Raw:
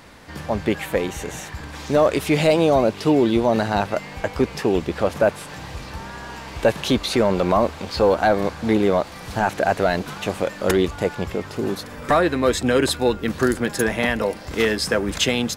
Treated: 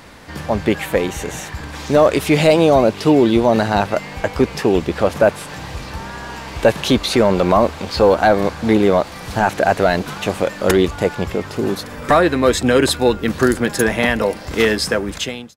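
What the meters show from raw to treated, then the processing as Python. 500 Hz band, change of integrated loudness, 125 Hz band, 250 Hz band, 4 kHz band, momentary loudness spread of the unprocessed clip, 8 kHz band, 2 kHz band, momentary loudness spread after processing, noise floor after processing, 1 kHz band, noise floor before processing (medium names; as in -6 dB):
+4.5 dB, +4.5 dB, +4.5 dB, +4.5 dB, +3.5 dB, 14 LU, +3.5 dB, +4.0 dB, 14 LU, -33 dBFS, +4.5 dB, -37 dBFS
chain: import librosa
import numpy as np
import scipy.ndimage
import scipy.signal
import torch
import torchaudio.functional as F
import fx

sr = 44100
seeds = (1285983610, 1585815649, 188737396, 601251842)

y = fx.fade_out_tail(x, sr, length_s=0.82)
y = fx.quant_float(y, sr, bits=8)
y = y * 10.0 ** (4.5 / 20.0)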